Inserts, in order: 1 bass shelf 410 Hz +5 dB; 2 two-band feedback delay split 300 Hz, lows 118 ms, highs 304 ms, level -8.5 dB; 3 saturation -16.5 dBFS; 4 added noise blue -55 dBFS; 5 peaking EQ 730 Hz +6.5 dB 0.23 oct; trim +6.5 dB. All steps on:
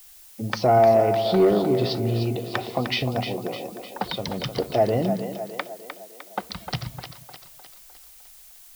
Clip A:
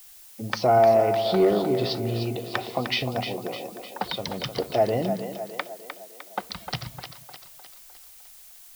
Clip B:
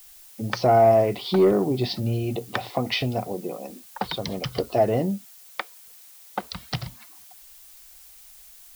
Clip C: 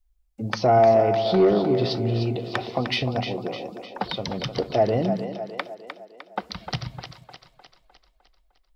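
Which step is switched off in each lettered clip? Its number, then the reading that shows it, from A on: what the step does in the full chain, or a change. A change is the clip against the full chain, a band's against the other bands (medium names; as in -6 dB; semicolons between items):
1, 125 Hz band -4.0 dB; 2, momentary loudness spread change -2 LU; 4, 8 kHz band -5.0 dB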